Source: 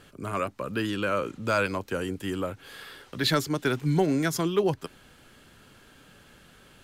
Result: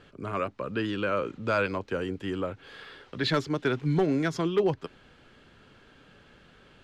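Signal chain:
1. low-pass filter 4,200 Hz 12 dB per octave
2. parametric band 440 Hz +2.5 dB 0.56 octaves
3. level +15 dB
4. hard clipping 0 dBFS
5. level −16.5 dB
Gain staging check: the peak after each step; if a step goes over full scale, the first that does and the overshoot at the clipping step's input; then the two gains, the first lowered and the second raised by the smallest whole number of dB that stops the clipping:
−11.5, −10.5, +4.5, 0.0, −16.5 dBFS
step 3, 4.5 dB
step 3 +10 dB, step 5 −11.5 dB

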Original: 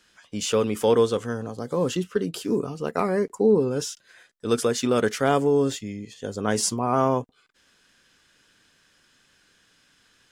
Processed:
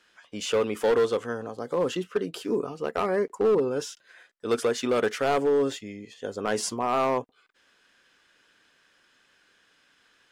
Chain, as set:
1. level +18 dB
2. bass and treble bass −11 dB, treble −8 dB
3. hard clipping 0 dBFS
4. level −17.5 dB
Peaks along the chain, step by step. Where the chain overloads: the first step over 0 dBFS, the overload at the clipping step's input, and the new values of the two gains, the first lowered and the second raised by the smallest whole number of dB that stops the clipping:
+10.0, +9.0, 0.0, −17.5 dBFS
step 1, 9.0 dB
step 1 +9 dB, step 4 −8.5 dB

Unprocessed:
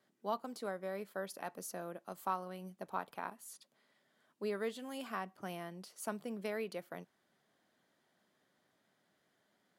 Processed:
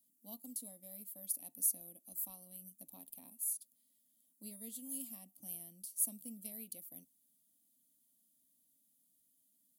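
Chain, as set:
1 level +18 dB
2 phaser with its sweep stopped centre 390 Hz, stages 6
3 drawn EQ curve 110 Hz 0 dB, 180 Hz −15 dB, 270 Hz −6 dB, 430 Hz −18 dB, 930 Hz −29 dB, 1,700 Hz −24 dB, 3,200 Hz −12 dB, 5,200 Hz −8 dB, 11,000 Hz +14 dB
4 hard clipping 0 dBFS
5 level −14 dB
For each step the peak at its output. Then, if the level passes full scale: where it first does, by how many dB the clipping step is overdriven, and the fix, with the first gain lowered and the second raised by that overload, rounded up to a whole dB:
−5.0, −9.5, −5.0, −5.0, −19.0 dBFS
no step passes full scale

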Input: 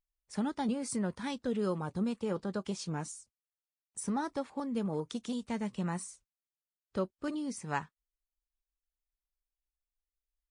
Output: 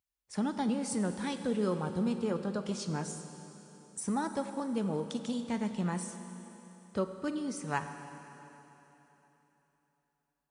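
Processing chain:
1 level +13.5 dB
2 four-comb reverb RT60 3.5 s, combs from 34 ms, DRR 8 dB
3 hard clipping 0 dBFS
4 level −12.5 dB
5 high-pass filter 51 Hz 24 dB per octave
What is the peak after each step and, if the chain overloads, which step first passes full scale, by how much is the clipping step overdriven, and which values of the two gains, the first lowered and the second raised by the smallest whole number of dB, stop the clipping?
−5.0, −5.0, −5.0, −17.5, −16.5 dBFS
no step passes full scale

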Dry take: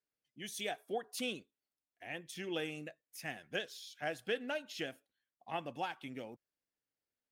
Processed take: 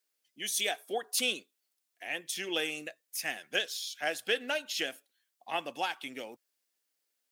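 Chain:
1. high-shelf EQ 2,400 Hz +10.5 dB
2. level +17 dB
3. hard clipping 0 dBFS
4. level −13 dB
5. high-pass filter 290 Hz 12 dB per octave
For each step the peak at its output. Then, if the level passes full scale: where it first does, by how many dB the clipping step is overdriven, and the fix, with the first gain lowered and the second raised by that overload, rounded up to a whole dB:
−20.0, −3.0, −3.0, −16.0, −16.0 dBFS
no step passes full scale

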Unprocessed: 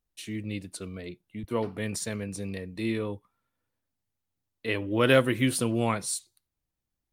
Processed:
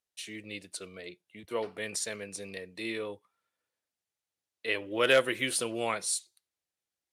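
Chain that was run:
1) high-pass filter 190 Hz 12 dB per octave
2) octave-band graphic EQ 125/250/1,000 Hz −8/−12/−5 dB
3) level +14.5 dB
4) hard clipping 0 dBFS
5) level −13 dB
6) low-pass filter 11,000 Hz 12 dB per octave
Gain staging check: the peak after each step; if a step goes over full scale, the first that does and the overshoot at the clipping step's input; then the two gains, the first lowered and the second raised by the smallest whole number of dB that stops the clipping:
−7.5, −10.5, +4.0, 0.0, −13.0, −12.5 dBFS
step 3, 4.0 dB
step 3 +10.5 dB, step 5 −9 dB

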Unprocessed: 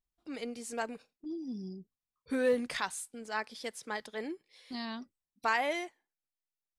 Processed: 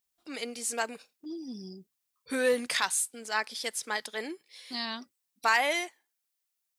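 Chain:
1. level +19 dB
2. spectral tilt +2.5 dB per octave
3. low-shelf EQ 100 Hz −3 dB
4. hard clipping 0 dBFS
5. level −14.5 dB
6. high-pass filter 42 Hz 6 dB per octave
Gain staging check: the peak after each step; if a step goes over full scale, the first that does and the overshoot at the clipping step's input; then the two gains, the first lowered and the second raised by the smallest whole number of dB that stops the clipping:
+2.5, +4.0, +4.0, 0.0, −14.5, −14.5 dBFS
step 1, 4.0 dB
step 1 +15 dB, step 5 −10.5 dB

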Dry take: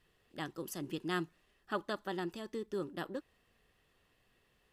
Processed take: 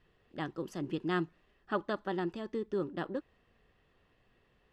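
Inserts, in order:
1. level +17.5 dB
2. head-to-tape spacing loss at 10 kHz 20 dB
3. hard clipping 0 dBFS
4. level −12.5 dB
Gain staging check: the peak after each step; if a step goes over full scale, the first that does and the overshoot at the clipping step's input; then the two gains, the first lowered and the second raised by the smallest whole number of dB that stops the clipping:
−3.0, −4.5, −4.5, −17.0 dBFS
no step passes full scale

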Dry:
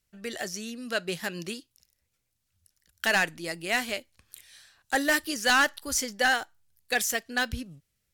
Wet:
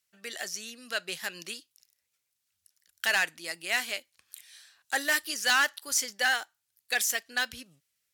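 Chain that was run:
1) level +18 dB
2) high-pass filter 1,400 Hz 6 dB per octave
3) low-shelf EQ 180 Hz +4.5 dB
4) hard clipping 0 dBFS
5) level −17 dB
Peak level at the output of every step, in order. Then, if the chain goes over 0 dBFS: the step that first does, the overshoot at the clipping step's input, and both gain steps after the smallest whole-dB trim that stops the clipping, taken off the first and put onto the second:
+2.5, +5.5, +5.5, 0.0, −17.0 dBFS
step 1, 5.5 dB
step 1 +12 dB, step 5 −11 dB

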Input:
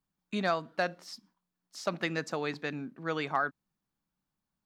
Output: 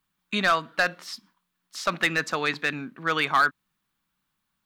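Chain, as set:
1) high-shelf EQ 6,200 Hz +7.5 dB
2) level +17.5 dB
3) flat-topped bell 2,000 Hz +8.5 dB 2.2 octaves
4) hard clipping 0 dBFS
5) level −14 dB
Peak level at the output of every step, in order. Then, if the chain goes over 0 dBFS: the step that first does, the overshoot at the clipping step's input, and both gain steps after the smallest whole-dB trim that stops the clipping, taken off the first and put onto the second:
−16.5, +1.0, +8.0, 0.0, −14.0 dBFS
step 2, 8.0 dB
step 2 +9.5 dB, step 5 −6 dB

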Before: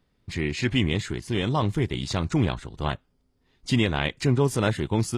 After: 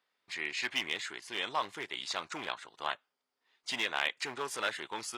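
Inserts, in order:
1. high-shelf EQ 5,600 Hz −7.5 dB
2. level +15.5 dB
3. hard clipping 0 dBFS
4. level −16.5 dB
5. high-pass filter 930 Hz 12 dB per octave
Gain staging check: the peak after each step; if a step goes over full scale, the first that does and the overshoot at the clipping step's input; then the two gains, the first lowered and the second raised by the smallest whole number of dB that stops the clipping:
−9.0, +6.5, 0.0, −16.5, −14.0 dBFS
step 2, 6.5 dB
step 2 +8.5 dB, step 4 −9.5 dB

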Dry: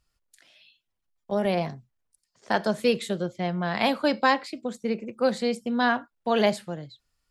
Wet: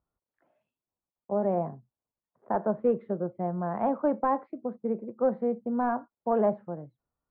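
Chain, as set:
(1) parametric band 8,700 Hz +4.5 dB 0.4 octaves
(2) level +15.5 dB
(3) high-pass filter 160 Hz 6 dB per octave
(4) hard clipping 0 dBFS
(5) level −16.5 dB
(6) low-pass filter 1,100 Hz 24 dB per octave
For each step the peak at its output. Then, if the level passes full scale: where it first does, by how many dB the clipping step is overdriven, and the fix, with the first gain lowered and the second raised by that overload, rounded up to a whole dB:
−8.5, +7.0, +7.5, 0.0, −16.5, −15.5 dBFS
step 2, 7.5 dB
step 2 +7.5 dB, step 5 −8.5 dB

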